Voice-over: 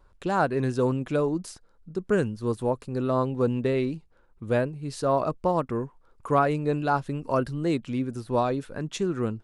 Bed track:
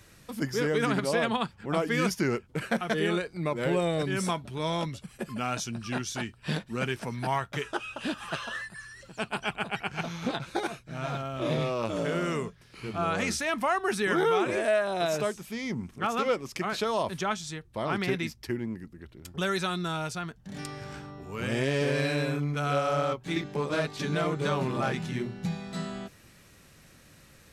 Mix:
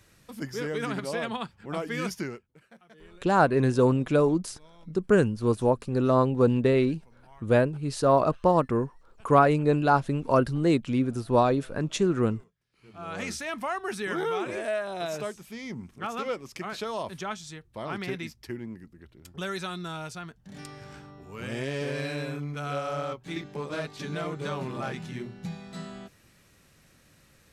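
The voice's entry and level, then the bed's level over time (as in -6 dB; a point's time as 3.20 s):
3.00 s, +3.0 dB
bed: 2.21 s -4.5 dB
2.61 s -26 dB
12.63 s -26 dB
13.20 s -4.5 dB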